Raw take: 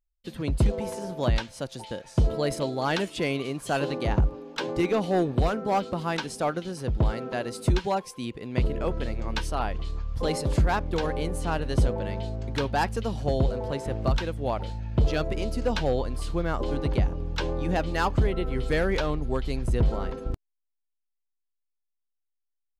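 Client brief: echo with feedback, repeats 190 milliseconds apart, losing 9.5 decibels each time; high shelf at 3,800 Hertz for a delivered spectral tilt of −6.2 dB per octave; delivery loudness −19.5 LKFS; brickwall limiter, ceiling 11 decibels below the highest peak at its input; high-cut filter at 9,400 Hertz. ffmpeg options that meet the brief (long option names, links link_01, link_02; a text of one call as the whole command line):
ffmpeg -i in.wav -af "lowpass=9400,highshelf=frequency=3800:gain=-8.5,alimiter=level_in=2dB:limit=-24dB:level=0:latency=1,volume=-2dB,aecho=1:1:190|380|570|760:0.335|0.111|0.0365|0.012,volume=15dB" out.wav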